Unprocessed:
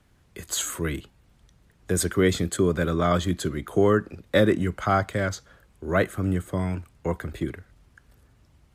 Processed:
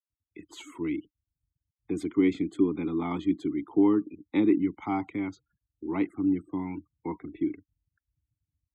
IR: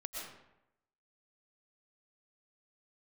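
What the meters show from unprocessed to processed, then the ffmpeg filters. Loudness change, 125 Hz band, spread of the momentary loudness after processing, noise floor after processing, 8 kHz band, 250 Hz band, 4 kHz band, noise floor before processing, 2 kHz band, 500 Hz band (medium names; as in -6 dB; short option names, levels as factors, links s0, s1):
-3.5 dB, -13.5 dB, 14 LU, under -85 dBFS, under -20 dB, +1.5 dB, under -15 dB, -61 dBFS, -12.5 dB, -9.0 dB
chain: -filter_complex "[0:a]afftfilt=real='re*gte(hypot(re,im),0.0112)':imag='im*gte(hypot(re,im),0.0112)':win_size=1024:overlap=0.75,asplit=3[s0][s1][s2];[s0]bandpass=f=300:t=q:w=8,volume=1[s3];[s1]bandpass=f=870:t=q:w=8,volume=0.501[s4];[s2]bandpass=f=2240:t=q:w=8,volume=0.355[s5];[s3][s4][s5]amix=inputs=3:normalize=0,volume=2.37"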